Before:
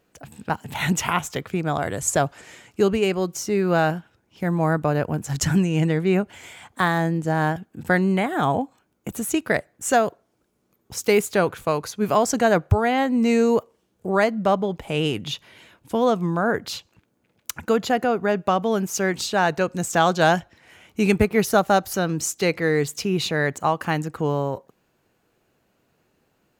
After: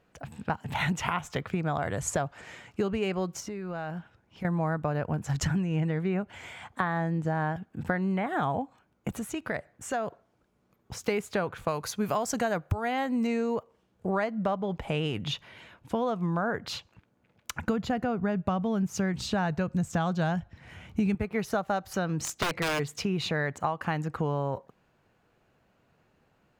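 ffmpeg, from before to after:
-filter_complex "[0:a]asettb=1/sr,asplit=3[s0][s1][s2];[s0]atrim=end=3.404[s3];[s1]atrim=start=3.4:end=4.45,asetpts=PTS-STARTPTS,afade=t=in:d=0.004:c=qsin,afade=t=out:st=1.046:d=0.004:c=qsin,acompressor=threshold=0.0251:ratio=8:attack=3.2:release=140:knee=1:detection=peak[s4];[s2]atrim=start=4.446[s5];[s3][s4]acrossfade=d=0.004:c1=hsin:c2=qsin[s6];[s6][s5]acrossfade=d=0.004:c1=qsin:c2=hsin,asettb=1/sr,asplit=3[s7][s8][s9];[s7]atrim=end=5.484[s10];[s8]atrim=start=5.48:end=8.27,asetpts=PTS-STARTPTS,afade=t=in:d=0.004:c=qsin,afade=t=out:st=2.786:d=0.004:c=qsin,acrossover=split=2700[s11][s12];[s12]acompressor=threshold=0.00794:ratio=4:attack=1:release=60[s13];[s11][s13]amix=inputs=2:normalize=0[s14];[s9]atrim=start=8.266[s15];[s10][s14]acrossfade=d=0.004:c1=hsin:c2=qsin[s16];[s16][s15]acrossfade=d=0.004:c1=qsin:c2=hsin,asettb=1/sr,asplit=3[s17][s18][s19];[s17]atrim=end=9.174[s20];[s18]atrim=start=9.17:end=11.04,asetpts=PTS-STARTPTS,afade=t=in:d=0.004:c=qsin,afade=t=out:st=1.866:d=0.004:c=qsin,acompressor=threshold=0.0251:ratio=2:attack=3.2:release=140:knee=1:detection=peak[s21];[s19]atrim=start=11.036[s22];[s20][s21]acrossfade=d=0.004:c1=hsin:c2=qsin[s23];[s23][s22]acrossfade=d=0.004:c1=qsin:c2=hsin,asettb=1/sr,asplit=3[s24][s25][s26];[s24]atrim=end=11.684[s27];[s25]atrim=start=11.68:end=13.27,asetpts=PTS-STARTPTS,afade=t=in:d=0.004:c=qsin,afade=t=out:st=1.586:d=0.004:c=qsin,aemphasis=mode=production:type=50kf[s28];[s26]atrim=start=13.266[s29];[s27][s28]acrossfade=d=0.004:c1=hsin:c2=qsin[s30];[s30][s29]acrossfade=d=0.004:c1=qsin:c2=hsin,asettb=1/sr,asplit=3[s31][s32][s33];[s31]atrim=end=17.664[s34];[s32]atrim=start=17.66:end=21.15,asetpts=PTS-STARTPTS,afade=t=in:d=0.004:c=qsin,afade=t=out:st=3.486:d=0.004:c=qsin,bass=f=250:g=13,treble=f=4000:g=2[s35];[s33]atrim=start=21.146[s36];[s34][s35]acrossfade=d=0.004:c1=hsin:c2=qsin[s37];[s37][s36]acrossfade=d=0.004:c1=qsin:c2=hsin,asplit=3[s38][s39][s40];[s38]afade=t=out:st=22.1:d=0.02[s41];[s39]aeval=exprs='(mod(5.96*val(0)+1,2)-1)/5.96':c=same,afade=t=in:st=22.1:d=0.02,afade=t=out:st=22.78:d=0.02[s42];[s40]afade=t=in:st=22.78:d=0.02[s43];[s41][s42][s43]amix=inputs=3:normalize=0,lowpass=f=2100:p=1,equalizer=f=340:t=o:w=1.3:g=-6,acompressor=threshold=0.0398:ratio=6,volume=1.33"

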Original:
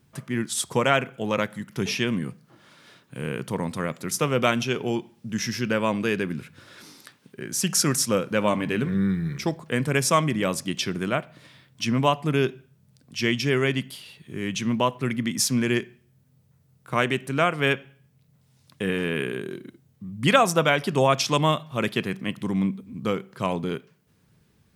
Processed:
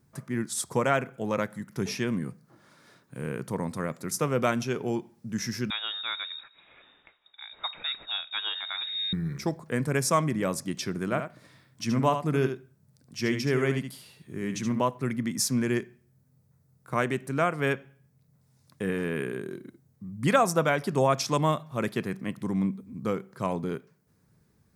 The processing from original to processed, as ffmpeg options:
-filter_complex "[0:a]asettb=1/sr,asplit=3[s0][s1][s2];[s0]atrim=end=5.704[s3];[s1]atrim=start=5.7:end=9.13,asetpts=PTS-STARTPTS,afade=t=in:d=0.004:c=qsin,afade=t=out:st=3.426:d=0.004:c=qsin,lowpass=f=3300:t=q:w=0.5098,lowpass=f=3300:t=q:w=0.6013,lowpass=f=3300:t=q:w=0.9,lowpass=f=3300:t=q:w=2.563,afreqshift=-3900[s4];[s2]atrim=start=9.126[s5];[s3][s4]acrossfade=d=0.004:c1=hsin:c2=qsin[s6];[s6][s5]acrossfade=d=0.004:c1=qsin:c2=hsin,asettb=1/sr,asplit=3[s7][s8][s9];[s7]atrim=end=11.044[s10];[s8]atrim=start=11.04:end=14.81,asetpts=PTS-STARTPTS,afade=t=in:d=0.004:c=qsin,afade=t=out:st=3.766:d=0.004:c=qsin,aecho=1:1:74:0.398,atrim=end_sample=166257[s11];[s9]atrim=start=14.806[s12];[s10][s11]acrossfade=d=0.004:c1=hsin:c2=qsin[s13];[s13][s12]acrossfade=d=0.004:c1=qsin:c2=hsin,equalizer=f=3000:w=1.8:g=-10,volume=0.708"

